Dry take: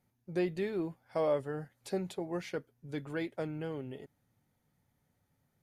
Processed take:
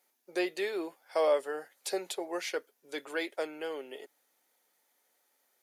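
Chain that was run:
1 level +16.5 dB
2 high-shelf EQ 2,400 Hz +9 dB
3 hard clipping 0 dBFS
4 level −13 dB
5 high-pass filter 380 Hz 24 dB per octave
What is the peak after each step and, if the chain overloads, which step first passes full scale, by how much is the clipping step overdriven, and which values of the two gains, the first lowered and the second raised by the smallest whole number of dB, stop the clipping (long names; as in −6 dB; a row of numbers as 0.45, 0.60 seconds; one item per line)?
−4.0, −3.0, −3.0, −16.0, −17.0 dBFS
no step passes full scale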